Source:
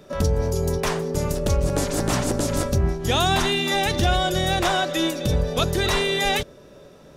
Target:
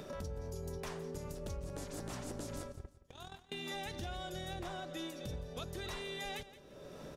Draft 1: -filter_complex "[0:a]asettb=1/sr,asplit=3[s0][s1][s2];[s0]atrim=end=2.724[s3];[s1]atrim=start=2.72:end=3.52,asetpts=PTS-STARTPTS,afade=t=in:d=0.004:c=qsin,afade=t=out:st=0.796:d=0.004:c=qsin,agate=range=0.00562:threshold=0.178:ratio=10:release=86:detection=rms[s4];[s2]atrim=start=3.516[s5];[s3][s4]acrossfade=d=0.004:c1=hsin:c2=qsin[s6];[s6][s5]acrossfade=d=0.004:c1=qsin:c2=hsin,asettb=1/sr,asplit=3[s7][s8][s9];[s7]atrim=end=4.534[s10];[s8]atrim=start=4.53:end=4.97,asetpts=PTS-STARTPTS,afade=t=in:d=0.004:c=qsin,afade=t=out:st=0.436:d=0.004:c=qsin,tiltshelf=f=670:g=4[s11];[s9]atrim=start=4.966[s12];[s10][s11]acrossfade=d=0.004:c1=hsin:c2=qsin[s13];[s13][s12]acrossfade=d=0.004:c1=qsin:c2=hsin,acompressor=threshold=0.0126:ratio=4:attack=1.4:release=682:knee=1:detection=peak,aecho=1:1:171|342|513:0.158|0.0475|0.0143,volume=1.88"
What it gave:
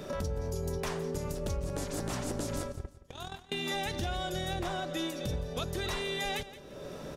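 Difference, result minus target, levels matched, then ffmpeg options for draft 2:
compression: peak gain reduction -8.5 dB
-filter_complex "[0:a]asettb=1/sr,asplit=3[s0][s1][s2];[s0]atrim=end=2.724[s3];[s1]atrim=start=2.72:end=3.52,asetpts=PTS-STARTPTS,afade=t=in:d=0.004:c=qsin,afade=t=out:st=0.796:d=0.004:c=qsin,agate=range=0.00562:threshold=0.178:ratio=10:release=86:detection=rms[s4];[s2]atrim=start=3.516[s5];[s3][s4]acrossfade=d=0.004:c1=hsin:c2=qsin[s6];[s6][s5]acrossfade=d=0.004:c1=qsin:c2=hsin,asettb=1/sr,asplit=3[s7][s8][s9];[s7]atrim=end=4.534[s10];[s8]atrim=start=4.53:end=4.97,asetpts=PTS-STARTPTS,afade=t=in:d=0.004:c=qsin,afade=t=out:st=0.436:d=0.004:c=qsin,tiltshelf=f=670:g=4[s11];[s9]atrim=start=4.966[s12];[s10][s11]acrossfade=d=0.004:c1=hsin:c2=qsin[s13];[s13][s12]acrossfade=d=0.004:c1=qsin:c2=hsin,acompressor=threshold=0.00355:ratio=4:attack=1.4:release=682:knee=1:detection=peak,aecho=1:1:171|342|513:0.158|0.0475|0.0143,volume=1.88"

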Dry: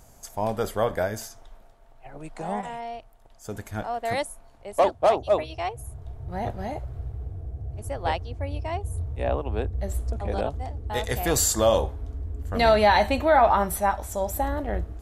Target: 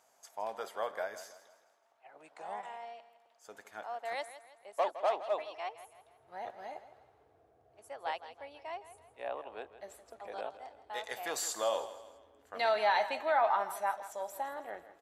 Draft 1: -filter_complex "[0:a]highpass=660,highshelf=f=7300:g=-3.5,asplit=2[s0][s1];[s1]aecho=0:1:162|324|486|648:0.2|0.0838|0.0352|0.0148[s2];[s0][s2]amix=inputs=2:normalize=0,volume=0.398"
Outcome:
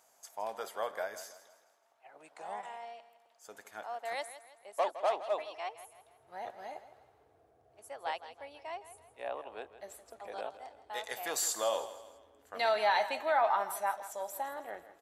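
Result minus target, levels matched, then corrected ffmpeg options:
8 kHz band +3.5 dB
-filter_complex "[0:a]highpass=660,highshelf=f=7300:g=-11.5,asplit=2[s0][s1];[s1]aecho=0:1:162|324|486|648:0.2|0.0838|0.0352|0.0148[s2];[s0][s2]amix=inputs=2:normalize=0,volume=0.398"

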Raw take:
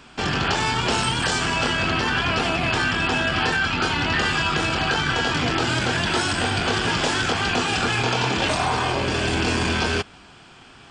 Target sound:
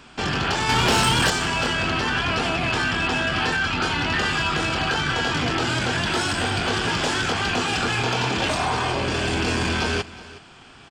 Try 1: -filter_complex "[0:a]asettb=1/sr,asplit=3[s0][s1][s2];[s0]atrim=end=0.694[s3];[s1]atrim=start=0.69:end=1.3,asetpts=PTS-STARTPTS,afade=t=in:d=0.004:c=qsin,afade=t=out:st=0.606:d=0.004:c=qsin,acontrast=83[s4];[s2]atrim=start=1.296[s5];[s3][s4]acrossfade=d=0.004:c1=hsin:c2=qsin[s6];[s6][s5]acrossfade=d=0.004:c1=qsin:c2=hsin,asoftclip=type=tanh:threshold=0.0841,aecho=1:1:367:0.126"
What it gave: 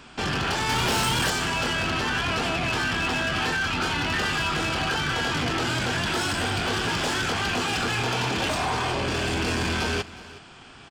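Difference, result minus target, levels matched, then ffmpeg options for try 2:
saturation: distortion +7 dB
-filter_complex "[0:a]asettb=1/sr,asplit=3[s0][s1][s2];[s0]atrim=end=0.694[s3];[s1]atrim=start=0.69:end=1.3,asetpts=PTS-STARTPTS,afade=t=in:d=0.004:c=qsin,afade=t=out:st=0.606:d=0.004:c=qsin,acontrast=83[s4];[s2]atrim=start=1.296[s5];[s3][s4]acrossfade=d=0.004:c1=hsin:c2=qsin[s6];[s6][s5]acrossfade=d=0.004:c1=qsin:c2=hsin,asoftclip=type=tanh:threshold=0.2,aecho=1:1:367:0.126"

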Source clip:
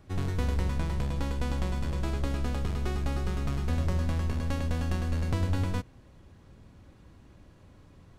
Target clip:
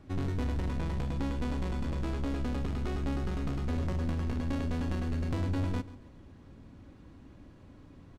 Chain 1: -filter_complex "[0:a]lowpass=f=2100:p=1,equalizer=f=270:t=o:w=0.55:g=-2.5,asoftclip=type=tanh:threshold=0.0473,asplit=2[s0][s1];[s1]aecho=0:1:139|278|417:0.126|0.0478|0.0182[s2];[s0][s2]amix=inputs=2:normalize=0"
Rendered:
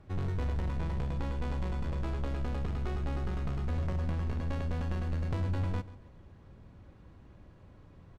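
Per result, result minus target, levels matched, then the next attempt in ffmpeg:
250 Hz band -4.5 dB; 4 kHz band -2.5 dB
-filter_complex "[0:a]lowpass=f=2100:p=1,equalizer=f=270:t=o:w=0.55:g=7.5,asoftclip=type=tanh:threshold=0.0473,asplit=2[s0][s1];[s1]aecho=0:1:139|278|417:0.126|0.0478|0.0182[s2];[s0][s2]amix=inputs=2:normalize=0"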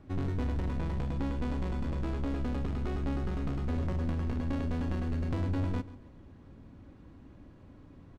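4 kHz band -3.5 dB
-filter_complex "[0:a]lowpass=f=4900:p=1,equalizer=f=270:t=o:w=0.55:g=7.5,asoftclip=type=tanh:threshold=0.0473,asplit=2[s0][s1];[s1]aecho=0:1:139|278|417:0.126|0.0478|0.0182[s2];[s0][s2]amix=inputs=2:normalize=0"

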